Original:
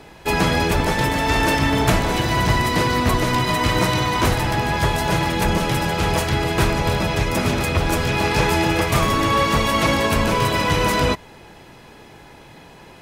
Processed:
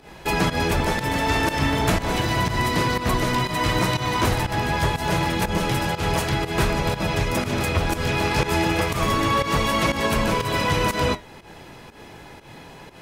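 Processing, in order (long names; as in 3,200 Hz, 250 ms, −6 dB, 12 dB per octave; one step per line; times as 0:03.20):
in parallel at −0.5 dB: downward compressor, threshold −29 dBFS, peak gain reduction 15.5 dB
on the sum: flanger 0.3 Hz, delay 4.5 ms, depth 8.7 ms, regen −70%
fake sidechain pumping 121 BPM, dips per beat 1, −14 dB, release 138 ms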